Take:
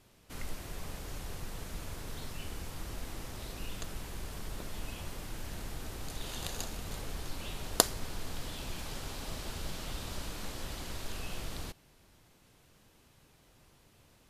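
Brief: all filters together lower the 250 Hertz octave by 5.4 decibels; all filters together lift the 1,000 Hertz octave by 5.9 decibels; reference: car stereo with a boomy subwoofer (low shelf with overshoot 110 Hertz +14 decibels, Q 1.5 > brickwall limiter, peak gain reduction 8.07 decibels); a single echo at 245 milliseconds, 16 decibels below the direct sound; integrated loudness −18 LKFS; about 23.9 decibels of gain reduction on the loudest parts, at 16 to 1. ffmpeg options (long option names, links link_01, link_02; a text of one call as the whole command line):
ffmpeg -i in.wav -af "equalizer=frequency=250:width_type=o:gain=-6,equalizer=frequency=1000:width_type=o:gain=8,acompressor=threshold=-44dB:ratio=16,lowshelf=frequency=110:width_type=q:width=1.5:gain=14,aecho=1:1:245:0.158,volume=26dB,alimiter=limit=-4dB:level=0:latency=1" out.wav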